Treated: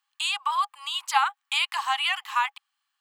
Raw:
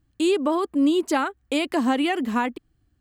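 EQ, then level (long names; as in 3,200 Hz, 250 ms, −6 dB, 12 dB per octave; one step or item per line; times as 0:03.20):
Chebyshev high-pass with heavy ripple 800 Hz, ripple 6 dB
+6.5 dB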